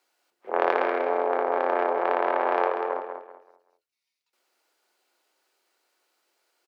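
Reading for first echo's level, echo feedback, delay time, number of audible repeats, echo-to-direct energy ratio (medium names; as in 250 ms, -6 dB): -7.0 dB, 29%, 191 ms, 3, -6.5 dB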